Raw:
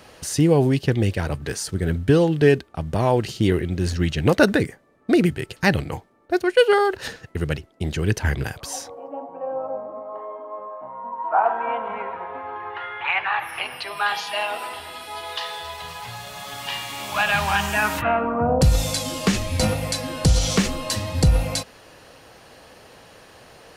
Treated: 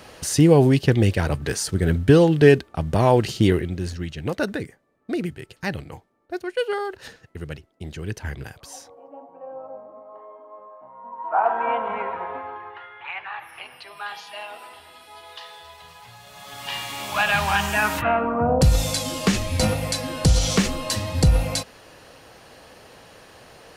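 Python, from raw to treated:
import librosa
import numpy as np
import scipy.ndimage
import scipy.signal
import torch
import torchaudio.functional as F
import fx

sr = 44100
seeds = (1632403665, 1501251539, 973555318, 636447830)

y = fx.gain(x, sr, db=fx.line((3.42, 2.5), (4.06, -9.0), (10.92, -9.0), (11.62, 2.0), (12.31, 2.0), (12.89, -10.5), (16.19, -10.5), (16.79, 0.0)))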